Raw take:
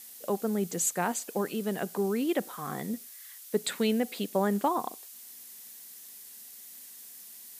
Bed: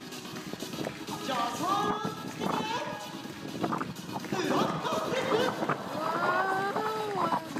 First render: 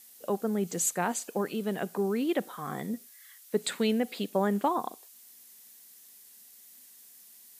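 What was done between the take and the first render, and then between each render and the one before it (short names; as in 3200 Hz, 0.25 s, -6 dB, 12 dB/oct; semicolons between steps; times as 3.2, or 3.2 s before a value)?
noise print and reduce 6 dB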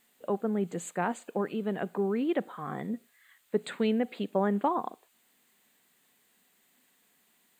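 running mean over 8 samples; requantised 12-bit, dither none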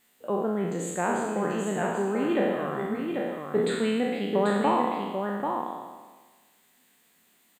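spectral trails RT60 1.35 s; echo 0.789 s -5 dB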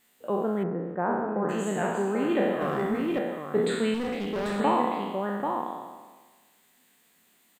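0.63–1.49 LPF 1500 Hz 24 dB/oct; 2.61–3.19 sample leveller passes 1; 3.94–4.6 hard clip -27 dBFS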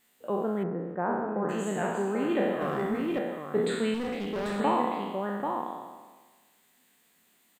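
gain -2 dB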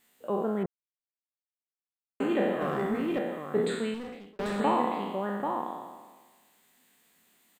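0.66–2.2 mute; 3.6–4.39 fade out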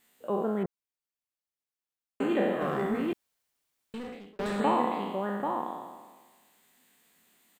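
3.13–3.94 room tone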